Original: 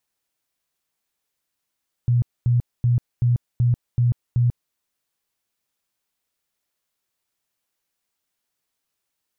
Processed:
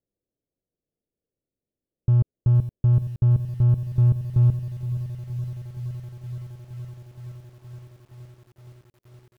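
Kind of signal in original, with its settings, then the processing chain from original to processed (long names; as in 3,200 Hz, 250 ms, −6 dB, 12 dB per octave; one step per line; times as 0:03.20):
tone bursts 121 Hz, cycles 17, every 0.38 s, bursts 7, −14.5 dBFS
Butterworth low-pass 550 Hz 36 dB per octave
in parallel at −3 dB: hard clipping −29 dBFS
on the sum: feedback echo at a low word length 469 ms, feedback 80%, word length 8 bits, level −13 dB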